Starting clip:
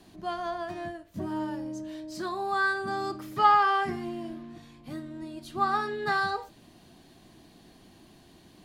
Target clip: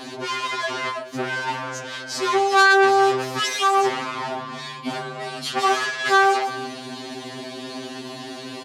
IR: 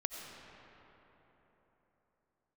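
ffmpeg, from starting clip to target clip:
-filter_complex "[0:a]asettb=1/sr,asplit=3[a][b][c];[a]atrim=end=4.954[d];[b]atrim=start=4.95:end=5.65,asetpts=PTS-STARTPTS,afade=t=in:d=0.004:c=qsin,afade=t=out:st=0.696:d=0.004:c=qsin,equalizer=f=390:w=2.3:g=-11[e];[c]atrim=start=5.646[f];[d][e]acrossfade=d=0.004:c1=hsin:c2=qsin[g];[g][f]acrossfade=d=0.004:c1=qsin:c2=hsin,aeval=exprs='0.335*sin(PI/2*4.47*val(0)/0.335)':c=same,asplit=2[h][i];[i]adelay=340,highpass=300,lowpass=3.4k,asoftclip=type=hard:threshold=-19dB,volume=-24dB[j];[h][j]amix=inputs=2:normalize=0,asoftclip=type=hard:threshold=-27dB,highpass=250,lowpass=7.1k,afftfilt=real='re*2.45*eq(mod(b,6),0)':imag='im*2.45*eq(mod(b,6),0)':win_size=2048:overlap=0.75,volume=9dB"

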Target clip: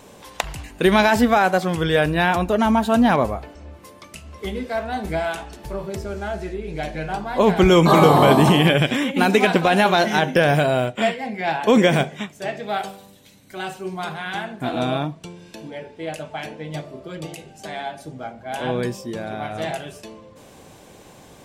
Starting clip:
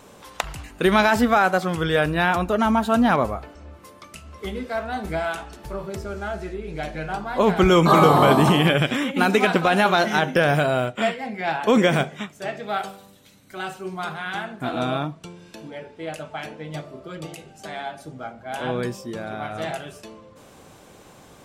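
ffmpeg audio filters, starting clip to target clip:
-af "equalizer=f=1.3k:t=o:w=0.33:g=-7,volume=2.5dB"

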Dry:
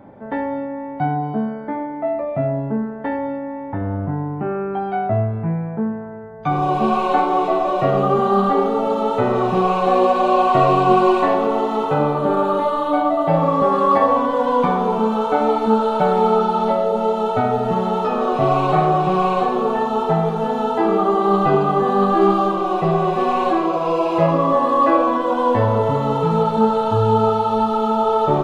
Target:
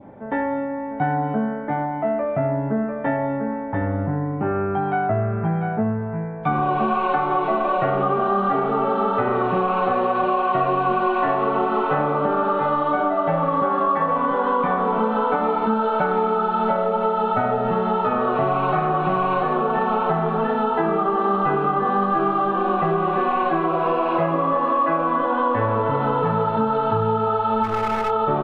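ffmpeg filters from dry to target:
-filter_complex "[0:a]adynamicequalizer=threshold=0.0158:dfrequency=1500:dqfactor=1.6:tfrequency=1500:tqfactor=1.6:attack=5:release=100:ratio=0.375:range=4:mode=boostabove:tftype=bell,asplit=2[a][b];[b]aecho=0:1:696:0.447[c];[a][c]amix=inputs=2:normalize=0,acompressor=threshold=-17dB:ratio=6,lowpass=f=3.4k:w=0.5412,lowpass=f=3.4k:w=1.3066,asplit=3[d][e][f];[d]afade=t=out:st=27.63:d=0.02[g];[e]aeval=exprs='clip(val(0),-1,0.0668)':c=same,afade=t=in:st=27.63:d=0.02,afade=t=out:st=28.09:d=0.02[h];[f]afade=t=in:st=28.09:d=0.02[i];[g][h][i]amix=inputs=3:normalize=0"

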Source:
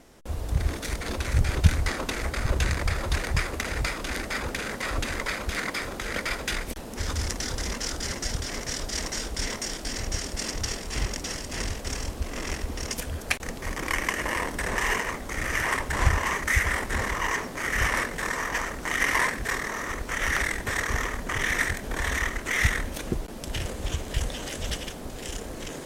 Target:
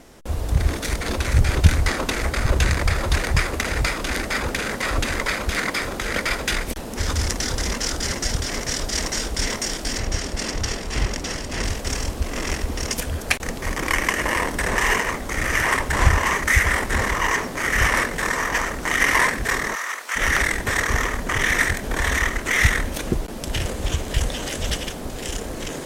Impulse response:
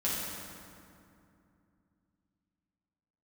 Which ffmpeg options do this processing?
-filter_complex "[0:a]asettb=1/sr,asplit=3[a][b][c];[a]atrim=end=9.984[d];[b]atrim=start=9.98:end=11.64,asetpts=PTS-STARTPTS,afade=t=in:d=0.004:c=qsin,afade=t=out:st=1.656:d=0.004:c=qsin,highshelf=f=6.3k:g=-7.5[e];[c]atrim=start=11.636[f];[d][e]acrossfade=d=0.004:c1=hsin:c2=qsin[g];[g][f]acrossfade=d=0.004:c1=qsin:c2=hsin,asplit=3[h][i][j];[h]afade=t=out:st=19.74:d=0.02[k];[i]highpass=970,afade=t=in:st=19.74:d=0.02,afade=t=out:st=20.15:d=0.02[l];[j]afade=t=in:st=20.15:d=0.02[m];[k][l][m]amix=inputs=3:normalize=0,asplit=2[n][o];[o]acontrast=82,volume=1.5dB[p];[n][p]amix=inputs=2:normalize=0,volume=-5dB"

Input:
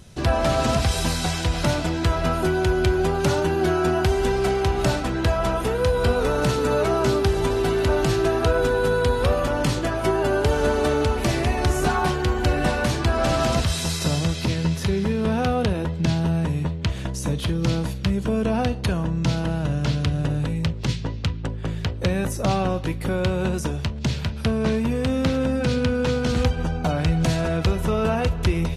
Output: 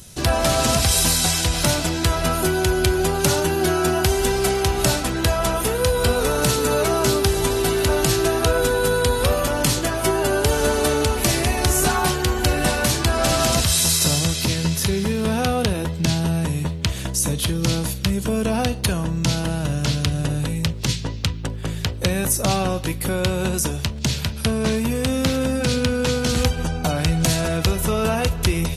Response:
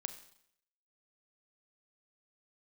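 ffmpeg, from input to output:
-af "aemphasis=mode=production:type=75fm,volume=1.5dB"

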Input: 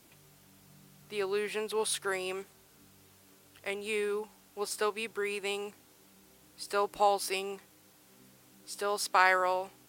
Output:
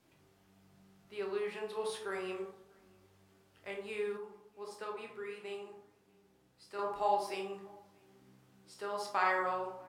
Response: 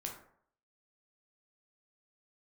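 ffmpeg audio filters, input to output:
-filter_complex "[0:a]lowpass=f=2.9k:p=1,asplit=2[a][b];[b]adelay=641.4,volume=-27dB,highshelf=f=4k:g=-14.4[c];[a][c]amix=inputs=2:normalize=0[d];[1:a]atrim=start_sample=2205,asetrate=36162,aresample=44100[e];[d][e]afir=irnorm=-1:irlink=0,asettb=1/sr,asplit=3[f][g][h];[f]atrim=end=4.174[i];[g]atrim=start=4.17:end=6.79,asetpts=PTS-STARTPTS,afade=t=in:d=0.004:c=qsin,afade=t=out:st=2.616:d=0.004:c=qsin,flanger=delay=9.3:depth=5.8:regen=-76:speed=1.5:shape=triangular[j];[h]atrim=start=6.786[k];[i][j]acrossfade=d=0.004:c1=hsin:c2=qsin[l];[l][k]acrossfade=d=0.004:c1=qsin:c2=hsin,volume=-5dB"

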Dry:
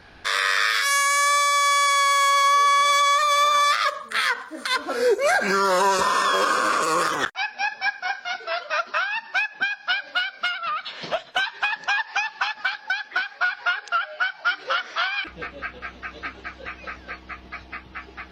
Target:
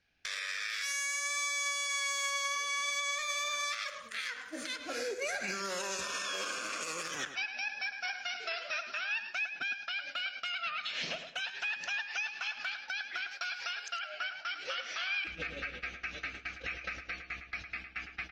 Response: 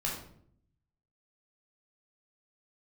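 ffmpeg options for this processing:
-filter_complex "[0:a]agate=range=-29dB:threshold=-38dB:ratio=16:detection=peak,asettb=1/sr,asplit=3[a][b][c];[a]atrim=end=13.314[d];[b]atrim=start=13.31:end=14,asetpts=PTS-STARTPTS,afade=t=in:d=0.004:c=qsin,afade=t=out:st=0.686:d=0.004:c=qsin,bass=f=250:g=0,treble=f=4k:g=12[e];[c]atrim=start=13.996[f];[d][e]acrossfade=d=0.004:c1=hsin:c2=qsin[g];[g][f]acrossfade=d=0.004:c1=qsin:c2=hsin,acompressor=threshold=-35dB:ratio=4,equalizer=f=400:t=o:w=0.67:g=-4,equalizer=f=1k:t=o:w=0.67:g=-10,equalizer=f=2.5k:t=o:w=0.67:g=9,equalizer=f=6.3k:t=o:w=0.67:g=10,alimiter=level_in=2.5dB:limit=-24dB:level=0:latency=1:release=96,volume=-2.5dB,asplit=2[h][i];[i]adelay=107,lowpass=f=3.4k:p=1,volume=-8.5dB,asplit=2[j][k];[k]adelay=107,lowpass=f=3.4k:p=1,volume=0.32,asplit=2[l][m];[m]adelay=107,lowpass=f=3.4k:p=1,volume=0.32,asplit=2[n][o];[o]adelay=107,lowpass=f=3.4k:p=1,volume=0.32[p];[j][l][n][p]amix=inputs=4:normalize=0[q];[h][q]amix=inputs=2:normalize=0"

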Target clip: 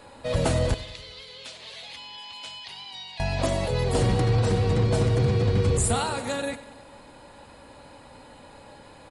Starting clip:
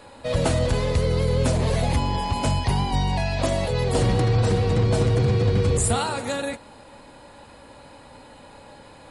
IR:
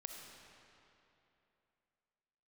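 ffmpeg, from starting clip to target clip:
-filter_complex "[0:a]asettb=1/sr,asplit=3[a][b][c];[a]atrim=end=0.744[d];[b]atrim=start=0.74:end=3.2,asetpts=PTS-STARTPTS,afade=t=in:d=0.004:c=qsin,afade=t=out:st=2.456:d=0.004:c=qsin,bandpass=f=3.5k:t=q:w=2.1:csg=0[e];[c]atrim=start=3.196[f];[d][e]acrossfade=d=0.004:c1=hsin:c2=qsin[g];[g][f]acrossfade=d=0.004:c1=qsin:c2=hsin,aecho=1:1:94|188|282|376|470|564:0.15|0.0883|0.0521|0.0307|0.0181|0.0107,volume=-2dB"

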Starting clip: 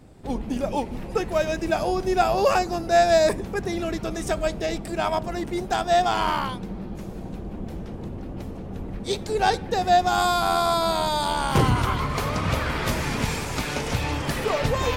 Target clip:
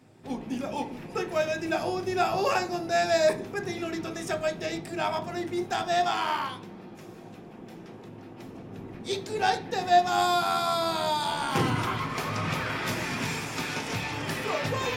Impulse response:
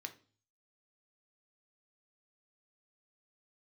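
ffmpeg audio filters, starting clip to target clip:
-filter_complex "[0:a]asettb=1/sr,asplit=3[a][b][c];[a]atrim=end=6.074[d];[b]atrim=start=6.07:end=8.43,asetpts=PTS-STARTPTS,afade=t=in:d=0.004:c=qsin,afade=t=out:st=2.356:d=0.004:c=qsin,lowshelf=f=260:g=-7.5[e];[c]atrim=start=8.426[f];[d][e]acrossfade=d=0.004:c1=hsin:c2=qsin[g];[g][f]acrossfade=d=0.004:c1=qsin:c2=hsin[h];[1:a]atrim=start_sample=2205[i];[h][i]afir=irnorm=-1:irlink=0"

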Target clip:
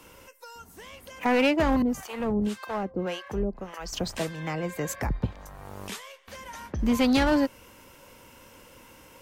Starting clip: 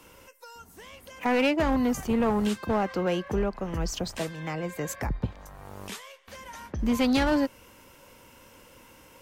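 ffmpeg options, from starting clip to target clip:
-filter_complex "[0:a]asettb=1/sr,asplit=3[a][b][c];[a]atrim=end=1.824[d];[b]atrim=start=1.82:end=3.93,asetpts=PTS-STARTPTS,afade=t=in:d=0.004:c=qsin,afade=t=out:st=2.106:d=0.004:c=qsin,acrossover=split=590[e][f];[e]aeval=exprs='val(0)*(1-1/2+1/2*cos(2*PI*1.8*n/s))':c=same[g];[f]aeval=exprs='val(0)*(1-1/2-1/2*cos(2*PI*1.8*n/s))':c=same[h];[g][h]amix=inputs=2:normalize=0[i];[c]atrim=start=3.926[j];[d][i]acrossfade=d=0.004:c1=hsin:c2=qsin[k];[k][j]acrossfade=d=0.004:c1=qsin:c2=hsin,volume=1.5dB"

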